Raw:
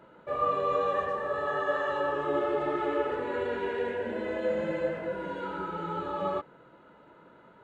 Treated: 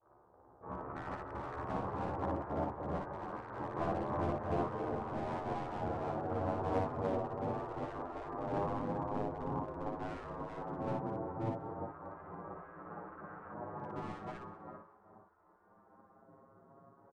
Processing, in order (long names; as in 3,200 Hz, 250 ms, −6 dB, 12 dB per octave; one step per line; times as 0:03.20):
vocoder with a gliding carrier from E3, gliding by +11 semitones
half-wave rectification
loudspeaker in its box 280–2,600 Hz, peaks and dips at 290 Hz +4 dB, 410 Hz +6 dB, 600 Hz +6 dB, 890 Hz −4 dB, 1,300 Hz −7 dB, 1,900 Hz −5 dB
repeating echo 174 ms, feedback 17%, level −6.5 dB
in parallel at −6 dB: gain into a clipping stage and back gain 28.5 dB
on the sum: double-tracking delay 26 ms −2.5 dB
echo with shifted repeats 83 ms, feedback 36%, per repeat +40 Hz, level −21 dB
gate on every frequency bin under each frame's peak −25 dB weak
change of speed 0.446×
dynamic equaliser 1,200 Hz, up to −4 dB, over −59 dBFS, Q 2.4
highs frequency-modulated by the lows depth 0.24 ms
level +9.5 dB